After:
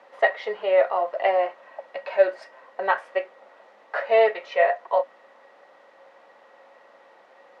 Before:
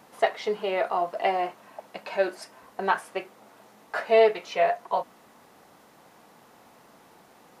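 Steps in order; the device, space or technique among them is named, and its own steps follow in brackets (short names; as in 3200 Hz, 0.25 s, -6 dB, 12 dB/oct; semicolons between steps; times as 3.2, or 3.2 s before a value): tin-can telephone (BPF 510–3100 Hz; small resonant body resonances 550/1900 Hz, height 15 dB, ringing for 85 ms); gain +1.5 dB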